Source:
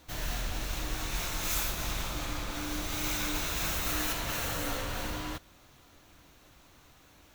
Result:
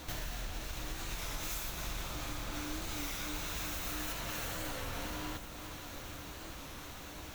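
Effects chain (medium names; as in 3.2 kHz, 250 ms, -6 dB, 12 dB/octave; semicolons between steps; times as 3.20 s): compression 6:1, threshold -49 dBFS, peak gain reduction 20.5 dB; echo whose repeats swap between lows and highs 387 ms, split 1.1 kHz, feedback 79%, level -9 dB; warped record 33 1/3 rpm, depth 100 cents; trim +10.5 dB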